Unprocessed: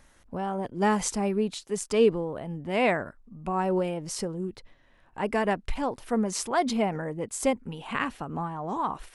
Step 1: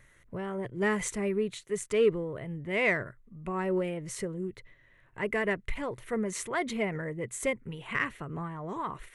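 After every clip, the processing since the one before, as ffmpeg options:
-filter_complex "[0:a]equalizer=f=125:t=o:w=0.33:g=11,equalizer=f=250:t=o:w=0.33:g=-7,equalizer=f=400:t=o:w=0.33:g=4,equalizer=f=800:t=o:w=0.33:g=-11,equalizer=f=2000:t=o:w=0.33:g=11,equalizer=f=5000:t=o:w=0.33:g=-11,asplit=2[s0][s1];[s1]asoftclip=type=tanh:threshold=0.0794,volume=0.282[s2];[s0][s2]amix=inputs=2:normalize=0,volume=0.531"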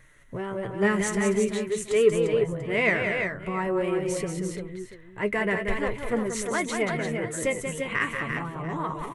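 -af "aecho=1:1:184|325|347|689:0.501|0.141|0.501|0.141,flanger=delay=6.2:depth=4.7:regen=49:speed=0.45:shape=triangular,volume=2.37"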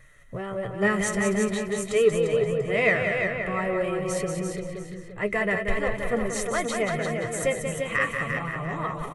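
-filter_complex "[0:a]aecho=1:1:1.6:0.45,asplit=2[s0][s1];[s1]adelay=524.8,volume=0.398,highshelf=f=4000:g=-11.8[s2];[s0][s2]amix=inputs=2:normalize=0"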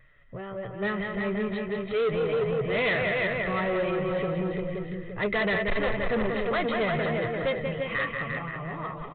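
-af "dynaudnorm=f=340:g=11:m=3.76,aresample=8000,asoftclip=type=tanh:threshold=0.133,aresample=44100,volume=0.596"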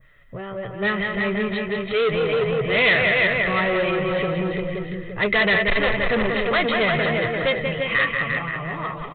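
-af "adynamicequalizer=threshold=0.00708:dfrequency=2600:dqfactor=0.79:tfrequency=2600:tqfactor=0.79:attack=5:release=100:ratio=0.375:range=2.5:mode=boostabove:tftype=bell,crystalizer=i=1.5:c=0,volume=1.68"

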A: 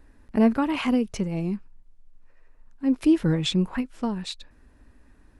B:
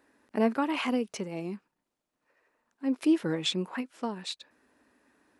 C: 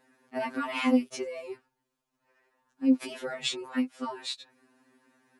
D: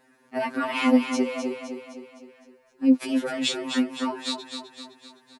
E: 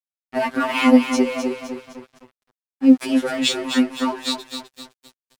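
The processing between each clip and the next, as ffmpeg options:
-af "highpass=310,volume=0.794"
-af "afftfilt=real='re*2.45*eq(mod(b,6),0)':imag='im*2.45*eq(mod(b,6),0)':win_size=2048:overlap=0.75,volume=1.5"
-af "aecho=1:1:257|514|771|1028|1285|1542:0.447|0.228|0.116|0.0593|0.0302|0.0154,volume=1.68"
-af "aeval=exprs='sgn(val(0))*max(abs(val(0))-0.00562,0)':c=same,volume=2.11"

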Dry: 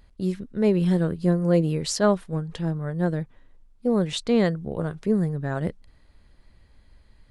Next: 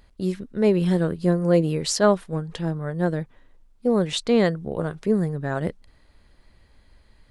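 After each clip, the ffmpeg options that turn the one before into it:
-af "bass=f=250:g=-4,treble=f=4000:g=0,volume=1.41"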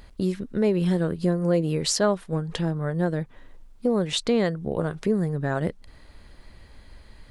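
-af "acompressor=threshold=0.0178:ratio=2,volume=2.37"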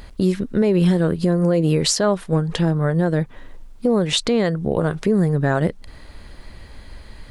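-af "alimiter=limit=0.133:level=0:latency=1:release=83,volume=2.66"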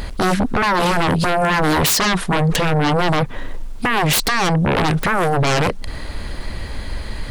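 -af "aeval=exprs='0.355*sin(PI/2*4.47*val(0)/0.355)':c=same,volume=0.631"

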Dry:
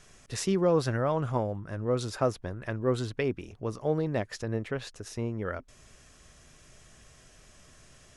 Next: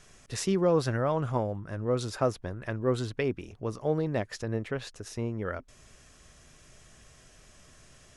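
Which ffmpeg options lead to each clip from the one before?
-af anull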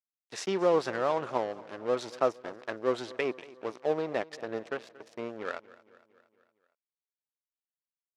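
-af "aeval=exprs='sgn(val(0))*max(abs(val(0))-0.0106,0)':c=same,highpass=360,lowpass=6100,aecho=1:1:231|462|693|924|1155:0.1|0.058|0.0336|0.0195|0.0113,volume=1.33"

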